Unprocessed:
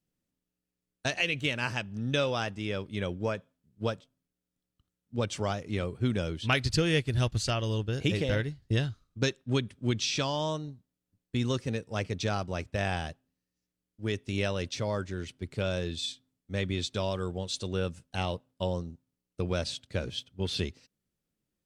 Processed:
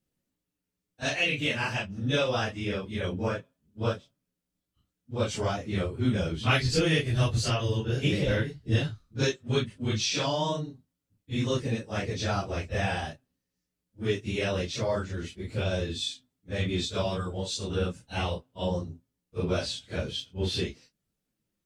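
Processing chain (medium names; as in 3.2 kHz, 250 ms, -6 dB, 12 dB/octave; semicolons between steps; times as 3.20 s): phase randomisation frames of 100 ms; trim +2 dB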